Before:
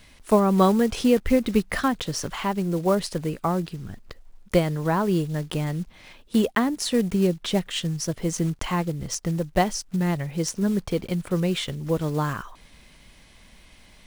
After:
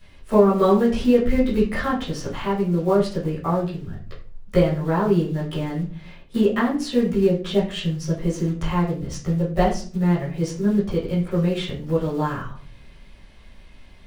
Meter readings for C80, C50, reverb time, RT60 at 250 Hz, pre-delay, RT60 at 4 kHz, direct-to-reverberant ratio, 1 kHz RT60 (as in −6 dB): 12.5 dB, 7.5 dB, 0.45 s, 0.60 s, 5 ms, 0.30 s, −10.5 dB, 0.35 s